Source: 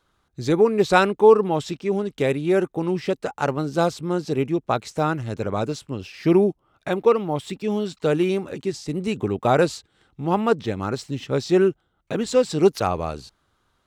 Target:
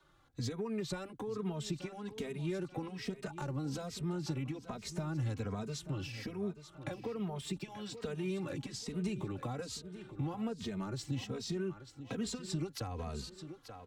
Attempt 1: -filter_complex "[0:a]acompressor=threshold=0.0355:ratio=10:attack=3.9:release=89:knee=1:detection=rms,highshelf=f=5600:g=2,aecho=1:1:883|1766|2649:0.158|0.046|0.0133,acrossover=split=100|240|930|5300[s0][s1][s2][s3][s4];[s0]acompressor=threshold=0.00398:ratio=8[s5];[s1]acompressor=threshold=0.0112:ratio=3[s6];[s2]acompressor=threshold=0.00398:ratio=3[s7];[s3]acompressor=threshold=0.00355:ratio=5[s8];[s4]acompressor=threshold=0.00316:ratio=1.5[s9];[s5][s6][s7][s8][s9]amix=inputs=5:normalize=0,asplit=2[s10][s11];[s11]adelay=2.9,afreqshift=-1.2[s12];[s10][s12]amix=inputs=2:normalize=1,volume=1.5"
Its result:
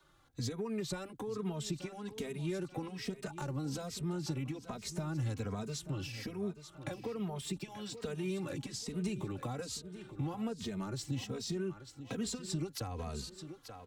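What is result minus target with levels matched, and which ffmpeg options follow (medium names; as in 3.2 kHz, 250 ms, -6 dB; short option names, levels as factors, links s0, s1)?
8 kHz band +3.0 dB
-filter_complex "[0:a]acompressor=threshold=0.0355:ratio=10:attack=3.9:release=89:knee=1:detection=rms,highshelf=f=5600:g=-5,aecho=1:1:883|1766|2649:0.158|0.046|0.0133,acrossover=split=100|240|930|5300[s0][s1][s2][s3][s4];[s0]acompressor=threshold=0.00398:ratio=8[s5];[s1]acompressor=threshold=0.0112:ratio=3[s6];[s2]acompressor=threshold=0.00398:ratio=3[s7];[s3]acompressor=threshold=0.00355:ratio=5[s8];[s4]acompressor=threshold=0.00316:ratio=1.5[s9];[s5][s6][s7][s8][s9]amix=inputs=5:normalize=0,asplit=2[s10][s11];[s11]adelay=2.9,afreqshift=-1.2[s12];[s10][s12]amix=inputs=2:normalize=1,volume=1.5"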